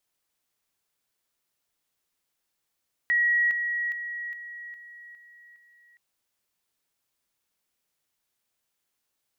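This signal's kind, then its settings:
level staircase 1,910 Hz −19.5 dBFS, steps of −6 dB, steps 7, 0.41 s 0.00 s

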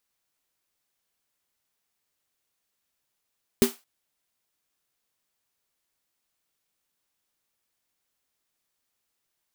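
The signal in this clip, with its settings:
synth snare length 0.22 s, tones 240 Hz, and 390 Hz, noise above 570 Hz, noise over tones −9 dB, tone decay 0.15 s, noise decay 0.27 s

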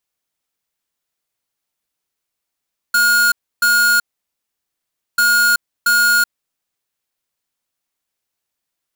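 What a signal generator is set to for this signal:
beeps in groups square 1,430 Hz, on 0.38 s, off 0.30 s, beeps 2, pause 1.18 s, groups 2, −13 dBFS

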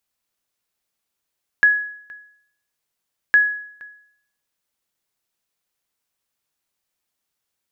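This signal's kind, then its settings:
ping with an echo 1,680 Hz, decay 0.65 s, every 1.71 s, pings 2, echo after 0.47 s, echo −24.5 dB −7 dBFS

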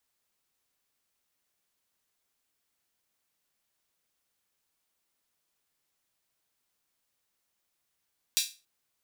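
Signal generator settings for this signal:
open synth hi-hat length 0.28 s, high-pass 3,600 Hz, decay 0.30 s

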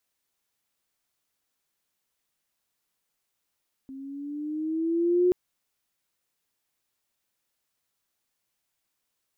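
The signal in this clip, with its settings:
pitch glide with a swell sine, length 1.43 s, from 265 Hz, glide +5.5 semitones, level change +21 dB, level −17 dB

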